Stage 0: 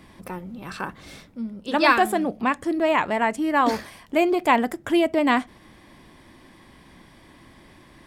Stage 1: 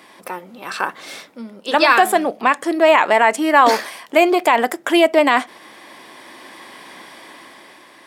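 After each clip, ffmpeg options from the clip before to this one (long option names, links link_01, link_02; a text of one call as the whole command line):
ffmpeg -i in.wav -af "highpass=470,dynaudnorm=framelen=200:gausssize=9:maxgain=7dB,alimiter=level_in=9dB:limit=-1dB:release=50:level=0:latency=1,volume=-1dB" out.wav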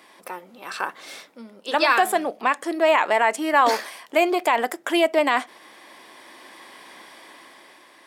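ffmpeg -i in.wav -af "bass=frequency=250:gain=-6,treble=frequency=4000:gain=1,volume=-5.5dB" out.wav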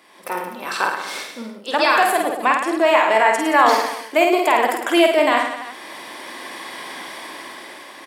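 ffmpeg -i in.wav -filter_complex "[0:a]asplit=2[link_01][link_02];[link_02]aecho=0:1:50|107.5|173.6|249.7|337.1:0.631|0.398|0.251|0.158|0.1[link_03];[link_01][link_03]amix=inputs=2:normalize=0,dynaudnorm=framelen=110:gausssize=5:maxgain=11dB,volume=-1.5dB" out.wav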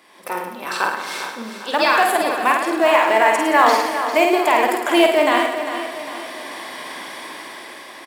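ffmpeg -i in.wav -filter_complex "[0:a]aecho=1:1:401|802|1203|1604|2005:0.316|0.149|0.0699|0.0328|0.0154,asplit=2[link_01][link_02];[link_02]acrusher=bits=3:mode=log:mix=0:aa=0.000001,volume=-12dB[link_03];[link_01][link_03]amix=inputs=2:normalize=0,volume=-2dB" out.wav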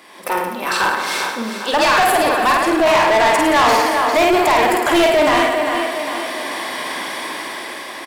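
ffmpeg -i in.wav -af "asoftclip=type=tanh:threshold=-17.5dB,volume=7.5dB" out.wav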